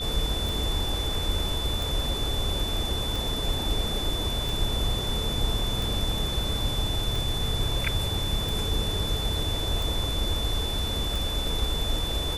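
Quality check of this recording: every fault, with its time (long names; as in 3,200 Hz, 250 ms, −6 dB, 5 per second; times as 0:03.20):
scratch tick 45 rpm
whistle 3,500 Hz −31 dBFS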